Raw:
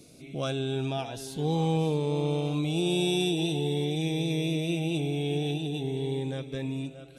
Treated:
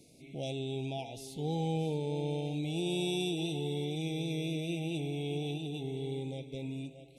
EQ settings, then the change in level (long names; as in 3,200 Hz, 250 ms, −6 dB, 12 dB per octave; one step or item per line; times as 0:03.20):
linear-phase brick-wall band-stop 930–2,000 Hz
−6.5 dB